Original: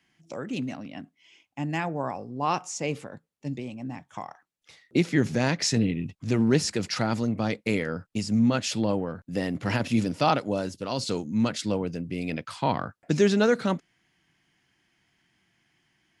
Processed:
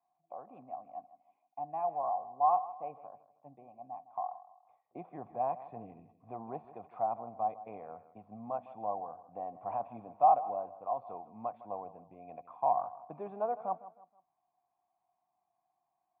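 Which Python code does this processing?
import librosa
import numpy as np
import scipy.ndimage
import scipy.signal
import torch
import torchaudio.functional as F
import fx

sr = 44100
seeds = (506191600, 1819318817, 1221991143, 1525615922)

p1 = fx.formant_cascade(x, sr, vowel='a')
p2 = fx.peak_eq(p1, sr, hz=710.0, db=7.5, octaves=0.9)
y = p2 + fx.echo_feedback(p2, sr, ms=158, feedback_pct=36, wet_db=-16.0, dry=0)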